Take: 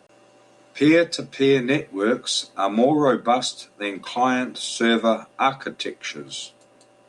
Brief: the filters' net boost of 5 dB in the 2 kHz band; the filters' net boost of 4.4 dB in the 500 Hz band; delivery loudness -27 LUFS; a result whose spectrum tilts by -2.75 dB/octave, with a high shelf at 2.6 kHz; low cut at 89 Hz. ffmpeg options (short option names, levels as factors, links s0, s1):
-af "highpass=89,equalizer=f=500:t=o:g=5,equalizer=f=2000:t=o:g=7.5,highshelf=f=2600:g=-3,volume=0.376"